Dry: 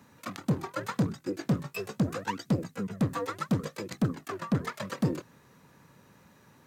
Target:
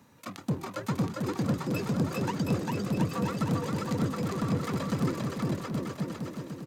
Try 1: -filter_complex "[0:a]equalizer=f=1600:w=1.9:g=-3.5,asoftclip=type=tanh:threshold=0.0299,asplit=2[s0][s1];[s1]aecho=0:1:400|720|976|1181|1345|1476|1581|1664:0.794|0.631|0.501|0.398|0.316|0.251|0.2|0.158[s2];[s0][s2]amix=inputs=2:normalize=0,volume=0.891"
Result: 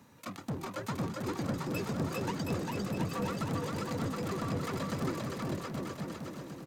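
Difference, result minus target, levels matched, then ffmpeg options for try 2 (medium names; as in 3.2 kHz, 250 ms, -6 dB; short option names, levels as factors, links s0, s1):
saturation: distortion +14 dB
-filter_complex "[0:a]equalizer=f=1600:w=1.9:g=-3.5,asoftclip=type=tanh:threshold=0.119,asplit=2[s0][s1];[s1]aecho=0:1:400|720|976|1181|1345|1476|1581|1664:0.794|0.631|0.501|0.398|0.316|0.251|0.2|0.158[s2];[s0][s2]amix=inputs=2:normalize=0,volume=0.891"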